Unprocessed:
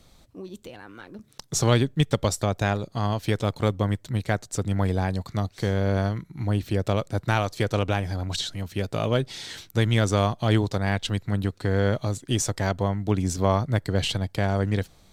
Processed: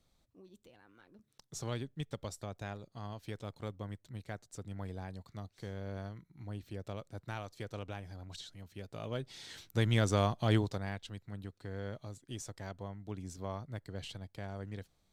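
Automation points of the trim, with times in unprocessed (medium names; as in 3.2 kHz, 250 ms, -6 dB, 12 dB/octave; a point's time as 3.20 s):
8.86 s -18.5 dB
9.87 s -7.5 dB
10.57 s -7.5 dB
11.07 s -19 dB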